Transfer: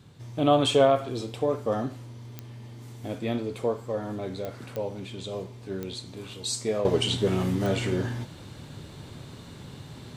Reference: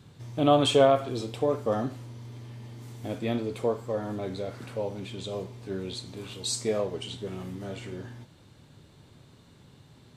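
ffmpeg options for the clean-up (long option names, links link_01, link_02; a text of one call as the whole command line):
ffmpeg -i in.wav -af "adeclick=threshold=4,asetnsamples=nb_out_samples=441:pad=0,asendcmd='6.85 volume volume -11.5dB',volume=0dB" out.wav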